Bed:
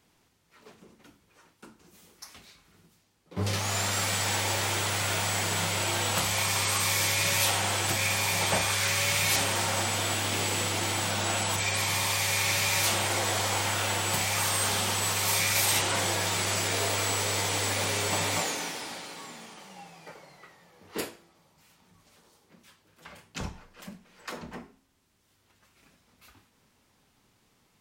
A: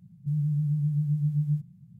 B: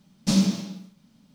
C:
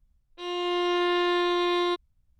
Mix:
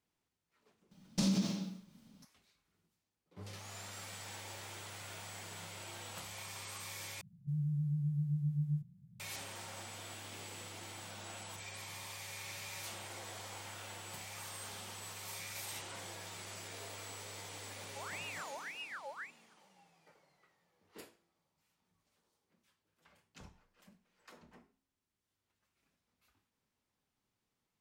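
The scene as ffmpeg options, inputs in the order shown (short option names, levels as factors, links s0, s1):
-filter_complex "[1:a]asplit=2[s0][s1];[0:a]volume=0.106[s2];[2:a]acompressor=threshold=0.0631:ratio=6:attack=3.2:release=140:knee=1:detection=peak[s3];[s1]aeval=exprs='val(0)*sin(2*PI*1700*n/s+1700*0.6/1.8*sin(2*PI*1.8*n/s))':c=same[s4];[s2]asplit=2[s5][s6];[s5]atrim=end=7.214[s7];[s0]atrim=end=1.99,asetpts=PTS-STARTPTS,volume=0.376[s8];[s6]atrim=start=9.196[s9];[s3]atrim=end=1.34,asetpts=PTS-STARTPTS,volume=0.668,afade=t=in:d=0.004:c=hsin,afade=t=out:st=1.336:d=0.004:c=hsin,adelay=910[s10];[s4]atrim=end=1.99,asetpts=PTS-STARTPTS,volume=0.133,afade=t=in:d=0.004:c=hsin,afade=t=out:st=1.986:d=0.004:c=hsin,adelay=17690[s11];[s7][s8]acrossfade=d=0.004:c1=hsin:c2=hsin[s12];[s12][s9]acrossfade=d=0.004:c1=hsin:c2=hsin[s13];[s13][s10][s11]amix=inputs=3:normalize=0"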